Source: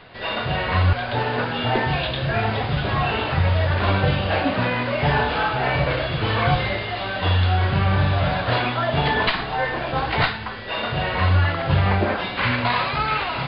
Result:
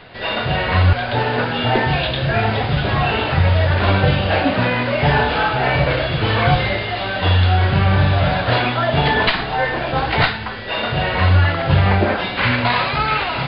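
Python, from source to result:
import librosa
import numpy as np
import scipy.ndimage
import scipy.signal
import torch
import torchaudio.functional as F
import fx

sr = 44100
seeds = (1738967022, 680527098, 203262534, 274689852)

y = fx.peak_eq(x, sr, hz=1100.0, db=-3.5, octaves=0.29)
y = F.gain(torch.from_numpy(y), 4.5).numpy()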